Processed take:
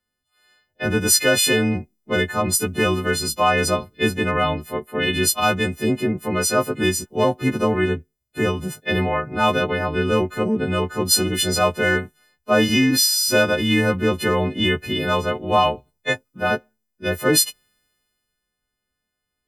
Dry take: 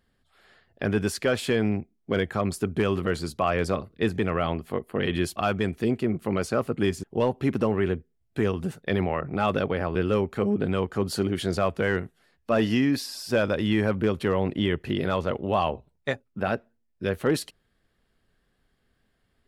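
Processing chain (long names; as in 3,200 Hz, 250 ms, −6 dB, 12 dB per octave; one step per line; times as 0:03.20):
every partial snapped to a pitch grid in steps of 3 semitones
multiband upward and downward expander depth 40%
level +4.5 dB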